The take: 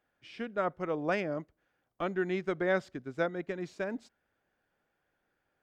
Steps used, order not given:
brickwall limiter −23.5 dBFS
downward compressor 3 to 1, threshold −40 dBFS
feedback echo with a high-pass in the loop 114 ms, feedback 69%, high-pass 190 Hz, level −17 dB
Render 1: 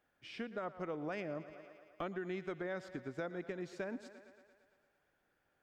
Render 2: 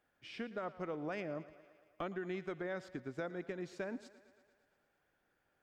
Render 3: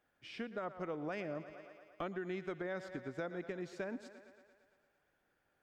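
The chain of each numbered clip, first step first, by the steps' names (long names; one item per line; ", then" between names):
brickwall limiter, then feedback echo with a high-pass in the loop, then downward compressor
brickwall limiter, then downward compressor, then feedback echo with a high-pass in the loop
feedback echo with a high-pass in the loop, then brickwall limiter, then downward compressor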